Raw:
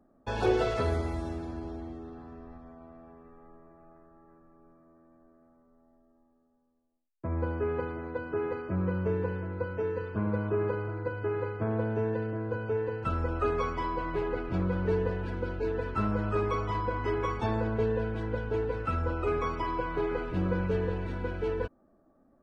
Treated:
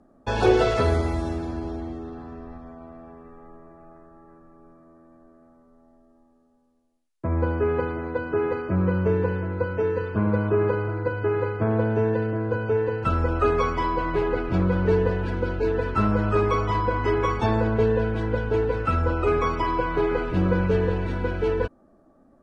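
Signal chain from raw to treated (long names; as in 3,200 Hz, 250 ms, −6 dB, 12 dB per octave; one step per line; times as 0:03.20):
elliptic low-pass filter 11,000 Hz
level +8.5 dB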